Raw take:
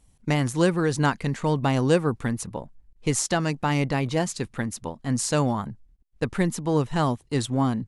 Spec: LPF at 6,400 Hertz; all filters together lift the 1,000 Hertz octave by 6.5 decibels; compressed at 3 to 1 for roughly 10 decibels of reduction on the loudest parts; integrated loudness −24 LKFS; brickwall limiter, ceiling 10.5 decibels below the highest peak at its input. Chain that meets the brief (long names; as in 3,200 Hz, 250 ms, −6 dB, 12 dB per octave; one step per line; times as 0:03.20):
low-pass filter 6,400 Hz
parametric band 1,000 Hz +8 dB
downward compressor 3 to 1, threshold −28 dBFS
level +12 dB
brickwall limiter −14 dBFS